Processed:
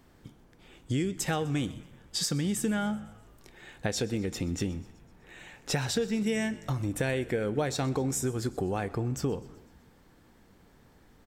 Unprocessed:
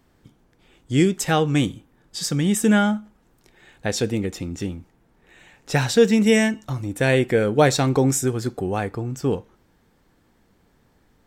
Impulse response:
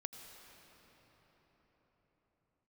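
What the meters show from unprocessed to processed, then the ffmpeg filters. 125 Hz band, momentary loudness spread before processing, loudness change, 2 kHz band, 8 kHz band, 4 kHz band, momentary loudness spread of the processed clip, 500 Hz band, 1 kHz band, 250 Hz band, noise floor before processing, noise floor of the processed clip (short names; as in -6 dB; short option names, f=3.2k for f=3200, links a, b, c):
-8.5 dB, 12 LU, -10.0 dB, -11.0 dB, -7.0 dB, -7.5 dB, 10 LU, -11.5 dB, -11.0 dB, -10.0 dB, -62 dBFS, -60 dBFS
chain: -filter_complex "[0:a]acompressor=threshold=-29dB:ratio=6,asplit=6[a][b][c][d][e][f];[b]adelay=126,afreqshift=-53,volume=-21dB[g];[c]adelay=252,afreqshift=-106,volume=-25.4dB[h];[d]adelay=378,afreqshift=-159,volume=-29.9dB[i];[e]adelay=504,afreqshift=-212,volume=-34.3dB[j];[f]adelay=630,afreqshift=-265,volume=-38.7dB[k];[a][g][h][i][j][k]amix=inputs=6:normalize=0,asplit=2[l][m];[1:a]atrim=start_sample=2205,afade=t=out:st=0.38:d=0.01,atrim=end_sample=17199[n];[m][n]afir=irnorm=-1:irlink=0,volume=-10dB[o];[l][o]amix=inputs=2:normalize=0"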